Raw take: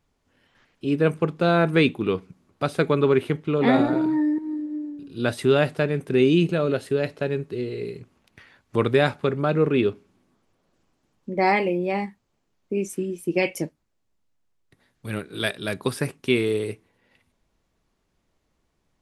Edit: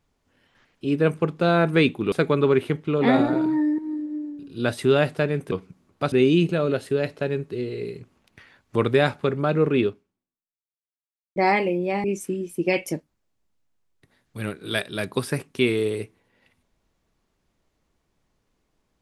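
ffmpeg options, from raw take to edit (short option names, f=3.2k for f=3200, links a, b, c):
-filter_complex "[0:a]asplit=6[a][b][c][d][e][f];[a]atrim=end=2.122[g];[b]atrim=start=2.718:end=6.122[h];[c]atrim=start=2.118:end=2.722[i];[d]atrim=start=6.118:end=11.36,asetpts=PTS-STARTPTS,afade=t=out:st=3.722:d=1.52:c=exp[j];[e]atrim=start=11.36:end=12.042,asetpts=PTS-STARTPTS,afade=t=in:d=0.004:c=hsin[k];[f]atrim=start=12.728[l];[g][h]acrossfade=d=0.004:c1=hsin:c2=hsin[m];[m][i]acrossfade=d=0.004:c1=hsin:c2=hsin[n];[j][k]concat=n=2:v=0:a=1[o];[n][o]acrossfade=d=0.004:c1=hsin:c2=hsin[p];[p][l]acrossfade=d=0.004:c1=hsin:c2=hsin"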